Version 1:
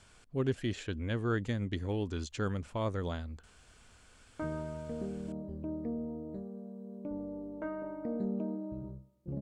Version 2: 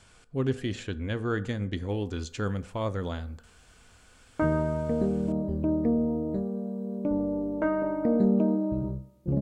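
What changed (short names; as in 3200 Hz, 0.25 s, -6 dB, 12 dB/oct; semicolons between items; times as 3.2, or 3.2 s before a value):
background +12.0 dB; reverb: on, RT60 0.60 s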